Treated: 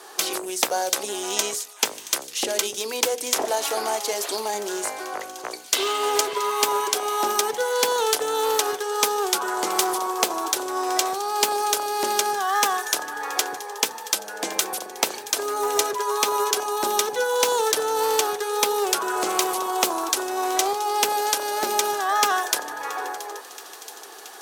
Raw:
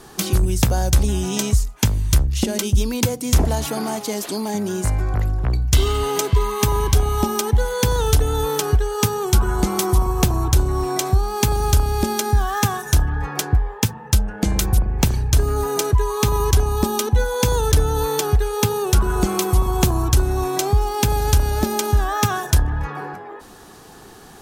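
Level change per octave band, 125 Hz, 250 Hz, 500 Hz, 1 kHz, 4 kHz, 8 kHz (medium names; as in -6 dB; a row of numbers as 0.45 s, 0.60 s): under -35 dB, -11.0 dB, -1.5 dB, +2.0 dB, +2.0 dB, +1.5 dB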